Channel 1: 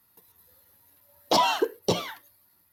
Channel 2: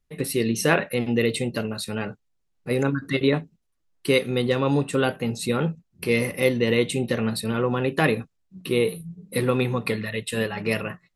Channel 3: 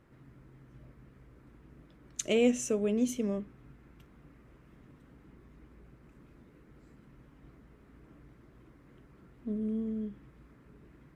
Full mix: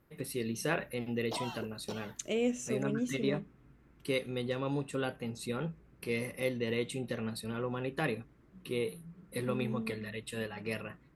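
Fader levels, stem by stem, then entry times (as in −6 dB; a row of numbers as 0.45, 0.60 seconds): −18.5, −12.5, −5.5 decibels; 0.00, 0.00, 0.00 seconds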